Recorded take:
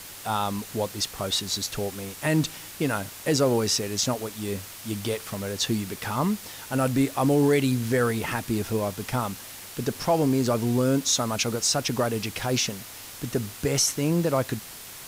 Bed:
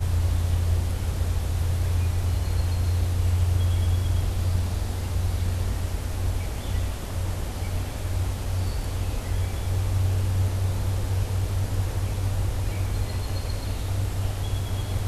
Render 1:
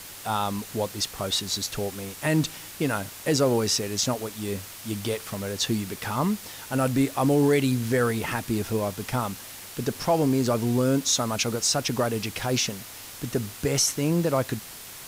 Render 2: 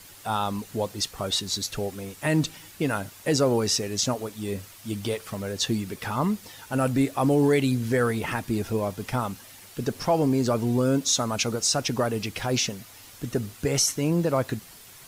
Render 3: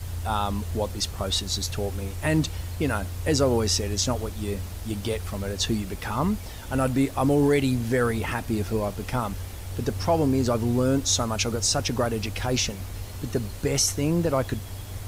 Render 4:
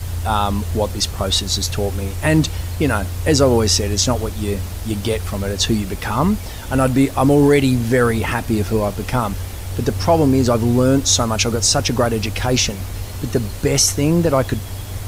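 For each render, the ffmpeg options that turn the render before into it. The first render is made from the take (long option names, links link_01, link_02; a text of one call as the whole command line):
ffmpeg -i in.wav -af anull out.wav
ffmpeg -i in.wav -af "afftdn=noise_reduction=8:noise_floor=-42" out.wav
ffmpeg -i in.wav -i bed.wav -filter_complex "[1:a]volume=-9dB[link_01];[0:a][link_01]amix=inputs=2:normalize=0" out.wav
ffmpeg -i in.wav -af "volume=8dB" out.wav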